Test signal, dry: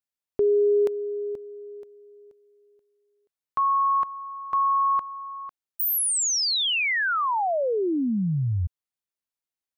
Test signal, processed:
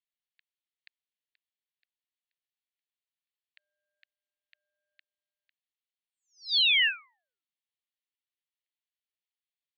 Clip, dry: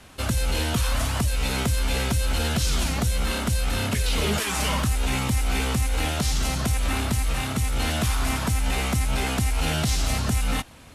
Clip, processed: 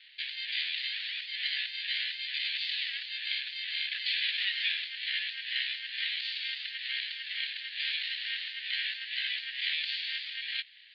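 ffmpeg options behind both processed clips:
-af "asuperpass=centerf=3000:order=12:qfactor=1.6,aeval=exprs='val(0)*sin(2*PI*500*n/s)':c=same,volume=1.68"

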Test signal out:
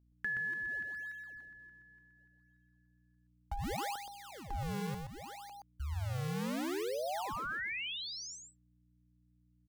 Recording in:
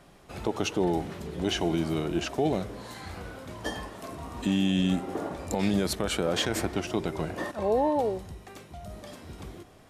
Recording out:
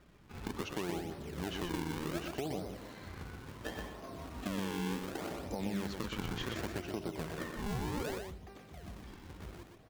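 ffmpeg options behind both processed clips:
-filter_complex "[0:a]aemphasis=mode=reproduction:type=75fm,aresample=16000,aresample=44100,acrossover=split=940[s0][s1];[s0]acrusher=samples=40:mix=1:aa=0.000001:lfo=1:lforange=64:lforate=0.68[s2];[s2][s1]amix=inputs=2:normalize=0,aeval=exprs='val(0)+0.001*(sin(2*PI*60*n/s)+sin(2*PI*2*60*n/s)/2+sin(2*PI*3*60*n/s)/3+sin(2*PI*4*60*n/s)/4+sin(2*PI*5*60*n/s)/5)':c=same,acompressor=threshold=0.0447:ratio=6,asplit=2[s3][s4];[s4]aecho=0:1:123:0.562[s5];[s3][s5]amix=inputs=2:normalize=0,volume=0.422"

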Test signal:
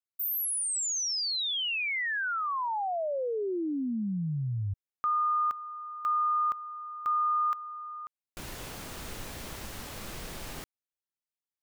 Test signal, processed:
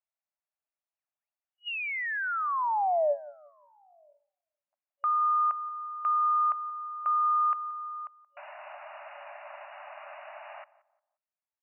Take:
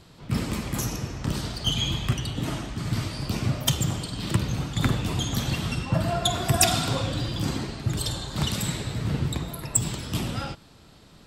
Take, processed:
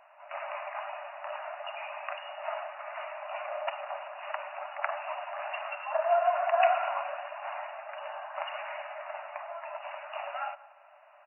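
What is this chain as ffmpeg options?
-filter_complex "[0:a]tiltshelf=f=920:g=8,asplit=2[s0][s1];[s1]adelay=177,lowpass=f=1200:p=1,volume=0.133,asplit=2[s2][s3];[s3]adelay=177,lowpass=f=1200:p=1,volume=0.34,asplit=2[s4][s5];[s5]adelay=177,lowpass=f=1200:p=1,volume=0.34[s6];[s0][s2][s4][s6]amix=inputs=4:normalize=0,aresample=16000,asoftclip=type=tanh:threshold=0.251,aresample=44100,afftfilt=real='re*between(b*sr/4096,560,2900)':imag='im*between(b*sr/4096,560,2900)':win_size=4096:overlap=0.75,volume=1.5"

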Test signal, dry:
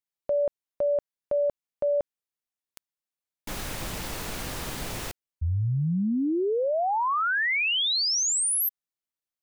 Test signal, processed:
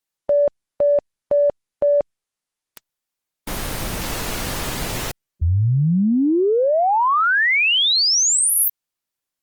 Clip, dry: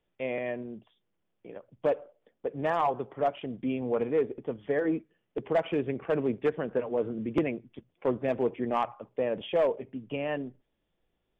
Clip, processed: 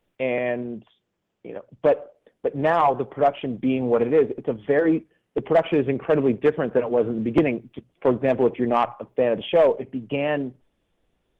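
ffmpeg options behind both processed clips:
-af "acontrast=83,volume=1.19" -ar 48000 -c:a libopus -b:a 20k

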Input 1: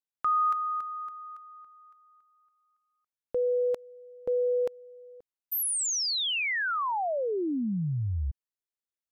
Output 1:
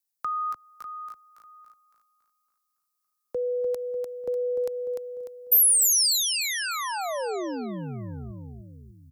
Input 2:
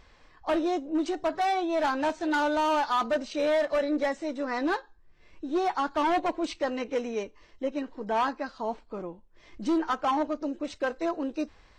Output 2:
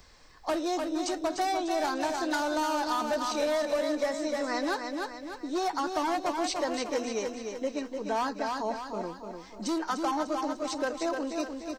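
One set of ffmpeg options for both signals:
-filter_complex "[0:a]aecho=1:1:298|596|894|1192|1490:0.473|0.213|0.0958|0.0431|0.0194,acrossover=split=110|450[s0][s1][s2];[s0]acompressor=threshold=0.00224:ratio=4[s3];[s1]acompressor=threshold=0.02:ratio=4[s4];[s2]acompressor=threshold=0.0398:ratio=4[s5];[s3][s4][s5]amix=inputs=3:normalize=0,aexciter=amount=2.2:drive=8.3:freq=4300"

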